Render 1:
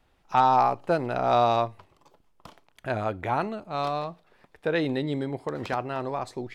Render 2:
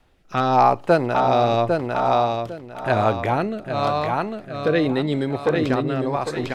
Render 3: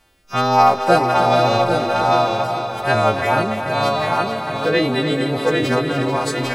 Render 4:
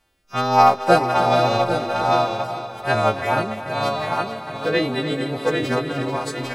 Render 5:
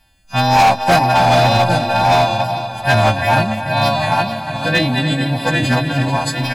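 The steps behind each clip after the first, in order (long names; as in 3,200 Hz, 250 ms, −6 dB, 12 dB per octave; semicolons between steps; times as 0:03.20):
on a send: repeating echo 801 ms, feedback 35%, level −5 dB; on the sum: rotating-speaker cabinet horn 0.9 Hz; level +9 dB
every partial snapped to a pitch grid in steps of 2 semitones; tape wow and flutter 29 cents; echo machine with several playback heads 146 ms, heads second and third, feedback 47%, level −9.5 dB; level +2 dB
expander for the loud parts 1.5 to 1, over −27 dBFS
parametric band 800 Hz −5 dB 2.9 octaves; comb filter 1.2 ms, depth 90%; hard clipping −16.5 dBFS, distortion −9 dB; level +8.5 dB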